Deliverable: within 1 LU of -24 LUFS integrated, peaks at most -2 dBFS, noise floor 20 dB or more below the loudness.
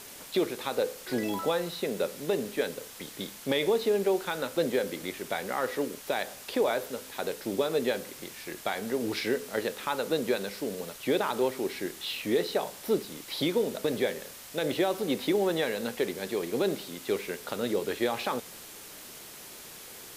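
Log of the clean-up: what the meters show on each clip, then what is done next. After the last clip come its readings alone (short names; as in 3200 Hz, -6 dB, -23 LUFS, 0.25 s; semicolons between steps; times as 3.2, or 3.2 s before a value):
noise floor -46 dBFS; noise floor target -51 dBFS; loudness -30.5 LUFS; peak -15.0 dBFS; loudness target -24.0 LUFS
-> denoiser 6 dB, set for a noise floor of -46 dBFS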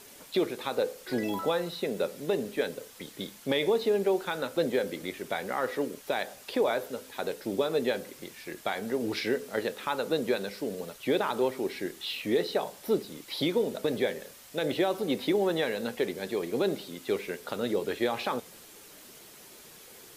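noise floor -51 dBFS; loudness -31.0 LUFS; peak -15.0 dBFS; loudness target -24.0 LUFS
-> gain +7 dB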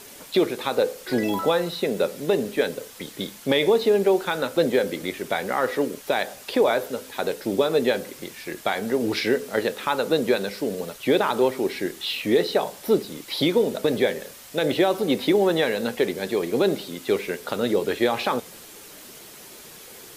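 loudness -24.0 LUFS; peak -8.0 dBFS; noise floor -44 dBFS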